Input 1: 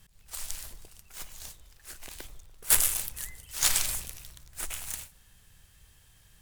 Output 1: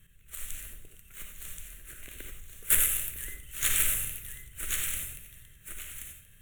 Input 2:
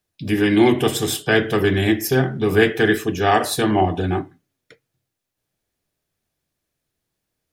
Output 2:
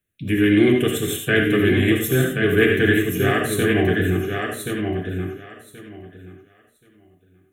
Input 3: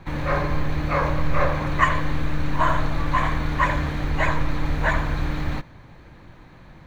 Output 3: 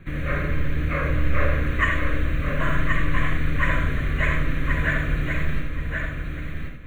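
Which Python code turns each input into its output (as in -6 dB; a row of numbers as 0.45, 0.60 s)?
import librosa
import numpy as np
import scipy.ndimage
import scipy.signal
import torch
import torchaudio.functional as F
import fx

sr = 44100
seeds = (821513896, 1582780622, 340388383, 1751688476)

p1 = fx.fixed_phaser(x, sr, hz=2100.0, stages=4)
p2 = p1 + fx.echo_feedback(p1, sr, ms=1078, feedback_pct=18, wet_db=-5.0, dry=0)
y = fx.rev_gated(p2, sr, seeds[0], gate_ms=110, shape='rising', drr_db=4.0)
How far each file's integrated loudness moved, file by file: -0.5, -0.5, -1.0 LU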